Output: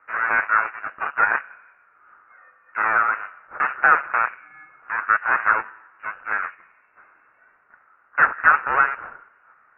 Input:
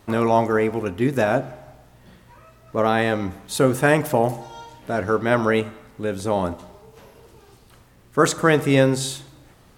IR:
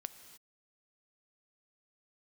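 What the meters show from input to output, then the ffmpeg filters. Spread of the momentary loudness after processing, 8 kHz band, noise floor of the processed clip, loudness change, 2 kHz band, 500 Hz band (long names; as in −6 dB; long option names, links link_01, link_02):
16 LU, below −40 dB, −59 dBFS, +0.5 dB, +8.0 dB, −17.5 dB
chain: -af "aeval=exprs='0.708*(cos(1*acos(clip(val(0)/0.708,-1,1)))-cos(1*PI/2))+0.158*(cos(8*acos(clip(val(0)/0.708,-1,1)))-cos(8*PI/2))':channel_layout=same,highpass=frequency=1700:width_type=q:width=6,lowpass=frequency=2600:width_type=q:width=0.5098,lowpass=frequency=2600:width_type=q:width=0.6013,lowpass=frequency=2600:width_type=q:width=0.9,lowpass=frequency=2600:width_type=q:width=2.563,afreqshift=-3100,volume=-4dB"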